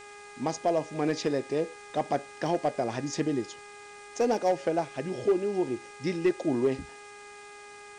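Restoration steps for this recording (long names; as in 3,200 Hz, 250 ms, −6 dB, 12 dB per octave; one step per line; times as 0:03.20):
clipped peaks rebuilt −17.5 dBFS
hum removal 410.6 Hz, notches 6
noise reduction from a noise print 26 dB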